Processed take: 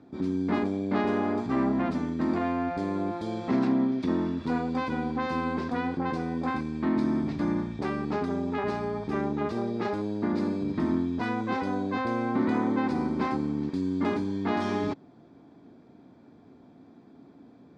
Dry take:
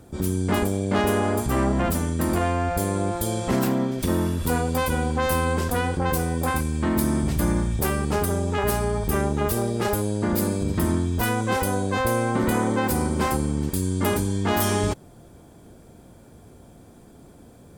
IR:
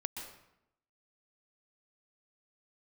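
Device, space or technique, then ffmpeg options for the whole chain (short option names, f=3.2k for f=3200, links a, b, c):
kitchen radio: -af "highpass=170,equalizer=f=270:t=q:w=4:g=8,equalizer=f=530:t=q:w=4:g=-6,equalizer=f=1.5k:t=q:w=4:g=-3,equalizer=f=3k:t=q:w=4:g=-9,lowpass=f=4.2k:w=0.5412,lowpass=f=4.2k:w=1.3066,volume=-4.5dB"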